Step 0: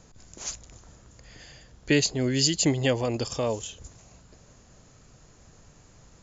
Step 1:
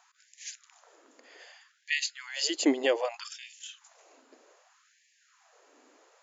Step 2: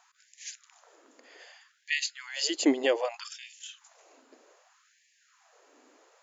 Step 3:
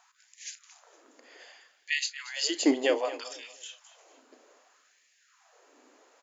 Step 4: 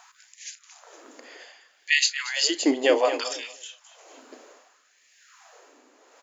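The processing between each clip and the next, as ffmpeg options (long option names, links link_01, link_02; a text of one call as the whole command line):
ffmpeg -i in.wav -af "bass=frequency=250:gain=2,treble=frequency=4000:gain=-9,afftfilt=real='re*gte(b*sr/1024,230*pow(1700/230,0.5+0.5*sin(2*PI*0.64*pts/sr)))':imag='im*gte(b*sr/1024,230*pow(1700/230,0.5+0.5*sin(2*PI*0.64*pts/sr)))':win_size=1024:overlap=0.75" out.wav
ffmpeg -i in.wav -af "lowshelf=frequency=150:gain=5" out.wav
ffmpeg -i in.wav -filter_complex "[0:a]asplit=2[link_01][link_02];[link_02]adelay=35,volume=-13dB[link_03];[link_01][link_03]amix=inputs=2:normalize=0,aecho=1:1:232|464|696:0.158|0.046|0.0133" out.wav
ffmpeg -i in.wav -af "tremolo=f=0.93:d=0.65,acontrast=30,volume=5.5dB" out.wav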